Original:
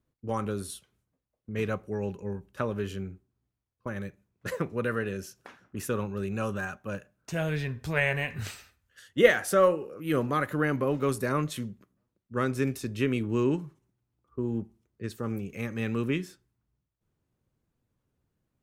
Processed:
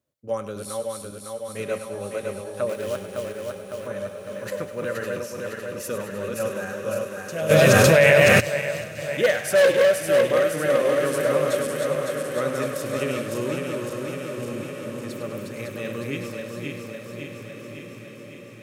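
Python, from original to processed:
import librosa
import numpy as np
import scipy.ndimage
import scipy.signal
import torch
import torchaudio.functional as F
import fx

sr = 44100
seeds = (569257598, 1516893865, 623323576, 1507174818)

y = fx.reverse_delay_fb(x, sr, ms=278, feedback_pct=79, wet_db=-3.0)
y = fx.peak_eq(y, sr, hz=580.0, db=15.0, octaves=0.33)
y = np.clip(10.0 ** (8.5 / 20.0) * y, -1.0, 1.0) / 10.0 ** (8.5 / 20.0)
y = fx.high_shelf(y, sr, hz=2200.0, db=9.0)
y = fx.echo_thinned(y, sr, ms=101, feedback_pct=63, hz=1100.0, wet_db=-10.0)
y = fx.quant_float(y, sr, bits=2, at=(2.69, 3.87))
y = scipy.signal.sosfilt(scipy.signal.butter(2, 86.0, 'highpass', fs=sr, output='sos'), y)
y = fx.echo_diffused(y, sr, ms=1509, feedback_pct=43, wet_db=-10.5)
y = fx.env_flatten(y, sr, amount_pct=100, at=(7.49, 8.39), fade=0.02)
y = y * 10.0 ** (-5.0 / 20.0)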